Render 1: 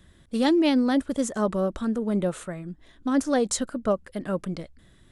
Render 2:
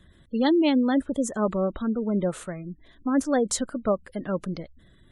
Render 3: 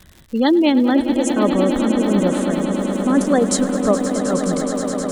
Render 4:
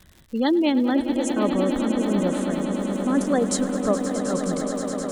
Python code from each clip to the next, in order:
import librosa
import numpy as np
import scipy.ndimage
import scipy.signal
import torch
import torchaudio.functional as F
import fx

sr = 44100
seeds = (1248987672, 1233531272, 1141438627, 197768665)

y1 = fx.spec_gate(x, sr, threshold_db=-30, keep='strong')
y2 = fx.echo_swell(y1, sr, ms=105, loudest=8, wet_db=-12.5)
y2 = fx.dmg_crackle(y2, sr, seeds[0], per_s=180.0, level_db=-39.0)
y2 = y2 * librosa.db_to_amplitude(6.0)
y3 = y2 + 10.0 ** (-16.0 / 20.0) * np.pad(y2, (int(760 * sr / 1000.0), 0))[:len(y2)]
y3 = y3 * librosa.db_to_amplitude(-5.5)